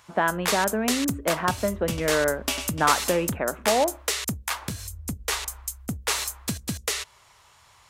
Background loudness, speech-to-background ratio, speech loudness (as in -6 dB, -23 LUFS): -29.0 LUFS, 3.0 dB, -26.0 LUFS